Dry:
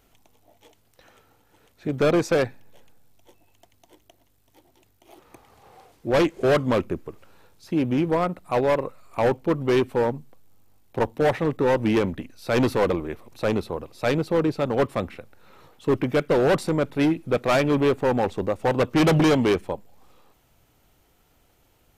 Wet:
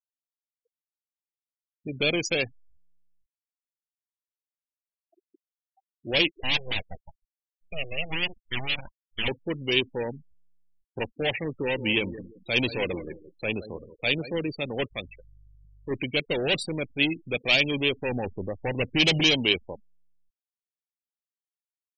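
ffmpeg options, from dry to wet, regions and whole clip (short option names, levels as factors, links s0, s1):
-filter_complex "[0:a]asettb=1/sr,asplit=3[s0][s1][s2];[s0]atrim=end=6.424[s3];[s1]atrim=start=6.42:end=9.28,asetpts=PTS-STARTPTS,afade=t=in:d=0.004:c=qsin,afade=t=out:st=2.856:d=0.004:c=qsin,highpass=180,bandreject=f=570:w=7.2,aeval=exprs='abs(val(0))':c=same[s4];[s2]atrim=start=9.276[s5];[s3][s4]acrossfade=d=0.004:c1=hsin:c2=qsin[s6];[s6][s5]acrossfade=d=0.004:c1=qsin:c2=hsin,asettb=1/sr,asplit=3[s7][s8][s9];[s7]atrim=end=11.504[s10];[s8]atrim=start=11.5:end=14.38,asetpts=PTS-STARTPTS,afade=t=in:d=0.004:c=qsin,afade=t=out:st=2.876:d=0.004:c=qsin,agate=range=0.0224:threshold=0.01:ratio=3:release=100:detection=peak,highshelf=f=6400:g=-2.5,asplit=2[s11][s12];[s12]adelay=171,lowpass=f=4500:p=1,volume=0.251,asplit=2[s13][s14];[s14]adelay=171,lowpass=f=4500:p=1,volume=0.27,asplit=2[s15][s16];[s16]adelay=171,lowpass=f=4500:p=1,volume=0.27[s17];[s11][s13][s15][s17]amix=inputs=4:normalize=0,atrim=end_sample=127008[s18];[s9]atrim=start=14.376[s19];[s10][s18]acrossfade=d=0.004:c1=hsin:c2=qsin[s20];[s20][s19]acrossfade=d=0.004:c1=qsin:c2=hsin,asettb=1/sr,asplit=3[s21][s22][s23];[s21]atrim=end=14.914[s24];[s22]atrim=start=14.91:end=15.91,asetpts=PTS-STARTPTS,afade=t=in:d=0.004:c=qsin,afade=t=out:st=0.996:d=0.004:c=qsin,equalizer=f=210:t=o:w=2.8:g=-6,aeval=exprs='val(0)+0.00631*(sin(2*PI*50*n/s)+sin(2*PI*2*50*n/s)/2+sin(2*PI*3*50*n/s)/3+sin(2*PI*4*50*n/s)/4+sin(2*PI*5*50*n/s)/5)':c=same[s25];[s23]atrim=start=15.906[s26];[s24][s25]acrossfade=d=0.004:c1=hsin:c2=qsin[s27];[s27][s26]acrossfade=d=0.004:c1=qsin:c2=hsin,asettb=1/sr,asplit=3[s28][s29][s30];[s28]atrim=end=18.094[s31];[s29]atrim=start=18.09:end=19,asetpts=PTS-STARTPTS,afade=t=in:d=0.004:c=qsin,afade=t=out:st=0.906:d=0.004:c=qsin,lowpass=2500,lowshelf=f=140:g=7.5,aeval=exprs='sgn(val(0))*max(abs(val(0))-0.00211,0)':c=same[s32];[s30]atrim=start=18.996[s33];[s31][s32]acrossfade=d=0.004:c1=hsin:c2=qsin[s34];[s34][s33]acrossfade=d=0.004:c1=qsin:c2=hsin,afftfilt=real='re*gte(hypot(re,im),0.0316)':imag='im*gte(hypot(re,im),0.0316)':win_size=1024:overlap=0.75,highshelf=f=1900:t=q:w=3:g=13.5,volume=0.422"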